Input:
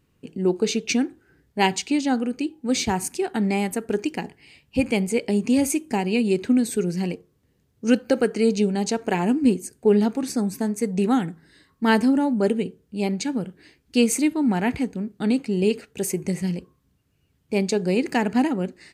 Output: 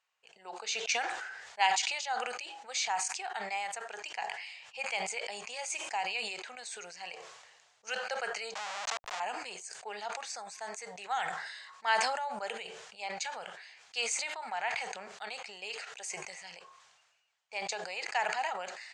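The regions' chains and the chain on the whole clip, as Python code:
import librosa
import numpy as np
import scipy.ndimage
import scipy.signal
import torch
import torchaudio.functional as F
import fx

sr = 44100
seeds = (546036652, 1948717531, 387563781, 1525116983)

y = fx.chain(x, sr, fx.peak_eq(hz=1500.0, db=-8.5, octaves=2.1),
    fx.schmitt(flips_db=-28.0),
    fx.env_flatten(amount_pct=100), at=(8.55, 9.2))
y = scipy.signal.sosfilt(scipy.signal.ellip(3, 1.0, 40, [720.0, 7300.0], 'bandpass', fs=sr, output='sos'), y)
y = fx.sustainer(y, sr, db_per_s=39.0)
y = y * 10.0 ** (-6.0 / 20.0)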